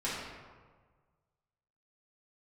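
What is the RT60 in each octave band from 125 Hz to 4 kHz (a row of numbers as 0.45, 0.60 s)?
1.9, 1.5, 1.5, 1.5, 1.1, 0.85 s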